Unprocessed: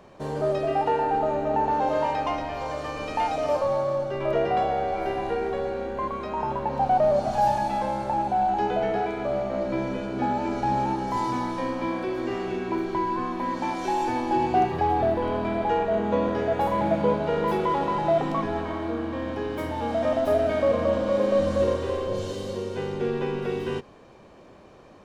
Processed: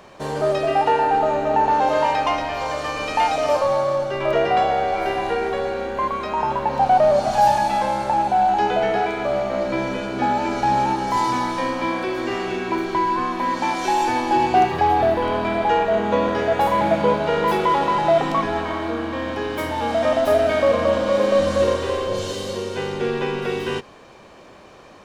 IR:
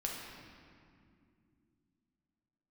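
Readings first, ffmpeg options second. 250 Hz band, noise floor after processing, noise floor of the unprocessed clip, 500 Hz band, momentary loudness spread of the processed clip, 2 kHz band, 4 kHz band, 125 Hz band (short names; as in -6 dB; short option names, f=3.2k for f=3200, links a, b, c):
+2.5 dB, -45 dBFS, -49 dBFS, +4.5 dB, 8 LU, +9.0 dB, +10.0 dB, +2.0 dB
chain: -af "tiltshelf=f=760:g=-4.5,volume=6dB"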